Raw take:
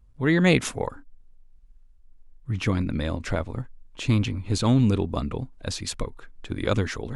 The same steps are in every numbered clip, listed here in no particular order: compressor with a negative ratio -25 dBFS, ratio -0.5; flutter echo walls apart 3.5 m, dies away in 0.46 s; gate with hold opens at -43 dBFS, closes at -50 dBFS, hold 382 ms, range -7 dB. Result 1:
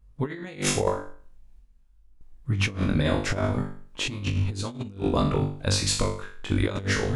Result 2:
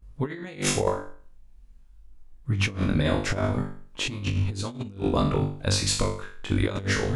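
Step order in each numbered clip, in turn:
flutter echo > gate with hold > compressor with a negative ratio; flutter echo > compressor with a negative ratio > gate with hold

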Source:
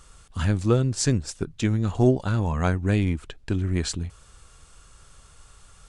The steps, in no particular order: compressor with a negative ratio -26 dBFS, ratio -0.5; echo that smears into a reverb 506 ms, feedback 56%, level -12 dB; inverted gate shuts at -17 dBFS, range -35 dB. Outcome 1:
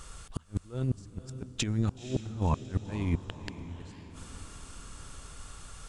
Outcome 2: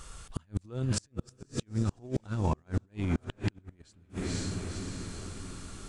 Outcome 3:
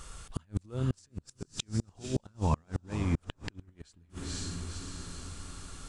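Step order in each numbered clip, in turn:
compressor with a negative ratio > inverted gate > echo that smears into a reverb; echo that smears into a reverb > compressor with a negative ratio > inverted gate; compressor with a negative ratio > echo that smears into a reverb > inverted gate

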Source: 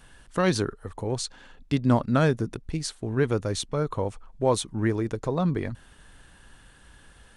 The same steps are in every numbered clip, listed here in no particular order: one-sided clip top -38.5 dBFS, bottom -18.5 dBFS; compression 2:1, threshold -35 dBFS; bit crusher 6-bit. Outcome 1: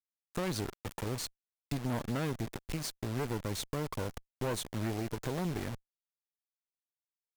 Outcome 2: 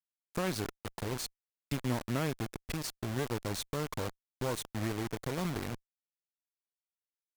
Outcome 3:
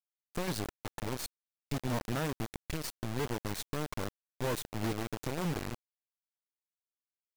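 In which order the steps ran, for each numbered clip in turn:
bit crusher > one-sided clip > compression; compression > bit crusher > one-sided clip; one-sided clip > compression > bit crusher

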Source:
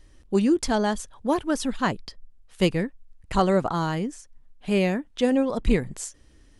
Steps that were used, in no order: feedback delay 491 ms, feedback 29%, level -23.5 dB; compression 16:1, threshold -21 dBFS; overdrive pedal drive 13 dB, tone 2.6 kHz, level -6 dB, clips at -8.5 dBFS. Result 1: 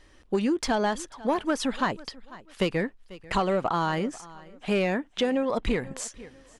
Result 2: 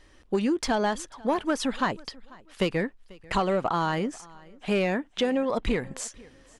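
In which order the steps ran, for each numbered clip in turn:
overdrive pedal > feedback delay > compression; overdrive pedal > compression > feedback delay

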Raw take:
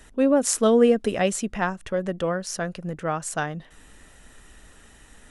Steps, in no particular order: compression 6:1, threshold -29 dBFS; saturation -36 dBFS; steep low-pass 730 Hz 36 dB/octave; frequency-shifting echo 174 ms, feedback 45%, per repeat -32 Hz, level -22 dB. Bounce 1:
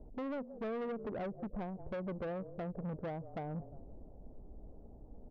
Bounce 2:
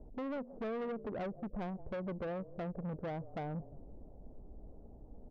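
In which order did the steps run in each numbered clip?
frequency-shifting echo > compression > steep low-pass > saturation; steep low-pass > compression > frequency-shifting echo > saturation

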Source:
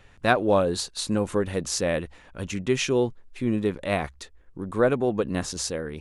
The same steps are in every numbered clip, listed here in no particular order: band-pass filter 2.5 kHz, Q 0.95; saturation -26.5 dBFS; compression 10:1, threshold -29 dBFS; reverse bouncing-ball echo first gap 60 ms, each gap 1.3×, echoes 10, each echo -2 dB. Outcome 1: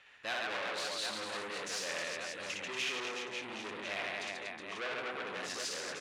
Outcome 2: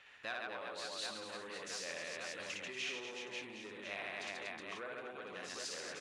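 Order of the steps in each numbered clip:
reverse bouncing-ball echo > saturation > band-pass filter > compression; reverse bouncing-ball echo > compression > saturation > band-pass filter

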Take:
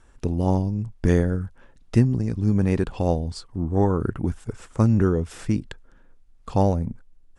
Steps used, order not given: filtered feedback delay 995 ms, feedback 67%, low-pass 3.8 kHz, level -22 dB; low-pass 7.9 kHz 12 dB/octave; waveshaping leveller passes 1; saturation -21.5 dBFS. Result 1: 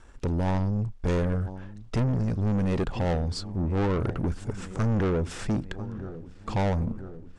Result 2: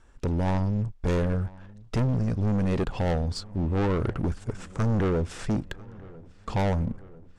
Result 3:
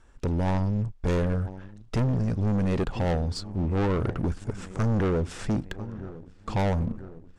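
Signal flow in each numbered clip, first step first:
filtered feedback delay > saturation > waveshaping leveller > low-pass; waveshaping leveller > low-pass > saturation > filtered feedback delay; filtered feedback delay > waveshaping leveller > low-pass > saturation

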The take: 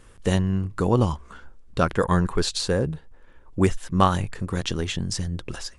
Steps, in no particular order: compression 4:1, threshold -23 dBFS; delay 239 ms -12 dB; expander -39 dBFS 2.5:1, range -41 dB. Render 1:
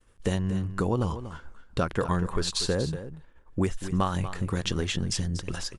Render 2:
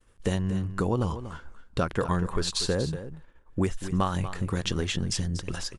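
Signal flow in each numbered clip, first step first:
compression > expander > delay; compression > delay > expander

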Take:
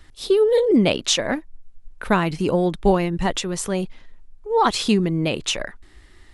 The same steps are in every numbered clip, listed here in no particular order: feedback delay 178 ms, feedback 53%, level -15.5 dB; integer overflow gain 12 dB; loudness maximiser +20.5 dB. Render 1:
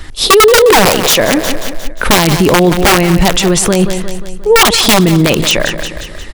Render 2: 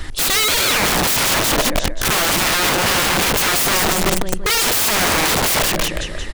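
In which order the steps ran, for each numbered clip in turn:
integer overflow > feedback delay > loudness maximiser; feedback delay > loudness maximiser > integer overflow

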